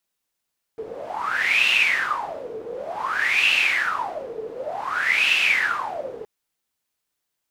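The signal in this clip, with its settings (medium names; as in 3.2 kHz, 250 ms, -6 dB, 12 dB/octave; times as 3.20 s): wind-like swept noise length 5.47 s, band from 440 Hz, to 2.7 kHz, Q 12, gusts 3, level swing 16 dB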